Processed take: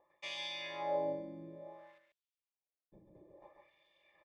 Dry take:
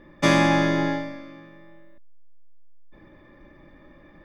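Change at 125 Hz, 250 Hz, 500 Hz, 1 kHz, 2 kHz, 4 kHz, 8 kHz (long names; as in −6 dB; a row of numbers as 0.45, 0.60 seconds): −28.5 dB, −26.0 dB, −12.5 dB, −16.0 dB, −20.5 dB, −11.5 dB, below −20 dB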